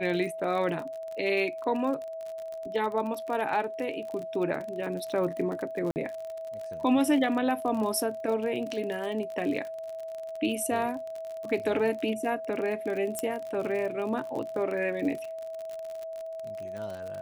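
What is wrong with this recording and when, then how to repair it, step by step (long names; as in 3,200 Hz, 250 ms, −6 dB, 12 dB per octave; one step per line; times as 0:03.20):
surface crackle 46 per second −34 dBFS
whistle 650 Hz −35 dBFS
0:05.91–0:05.96: drop-out 49 ms
0:13.19: click −15 dBFS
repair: click removal
notch filter 650 Hz, Q 30
repair the gap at 0:05.91, 49 ms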